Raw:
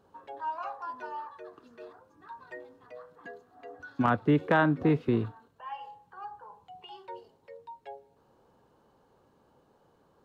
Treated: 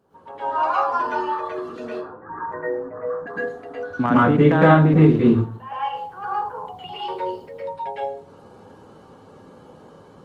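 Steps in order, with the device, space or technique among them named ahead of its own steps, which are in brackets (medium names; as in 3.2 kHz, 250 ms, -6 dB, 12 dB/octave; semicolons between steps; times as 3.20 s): 1.87–3.27 s: elliptic low-pass 1.7 kHz, stop band 60 dB; bass shelf 390 Hz +3 dB; far-field microphone of a smart speaker (reverberation RT60 0.40 s, pre-delay 104 ms, DRR -8 dB; high-pass 110 Hz 12 dB/octave; level rider gain up to 10 dB; trim -1 dB; Opus 24 kbps 48 kHz)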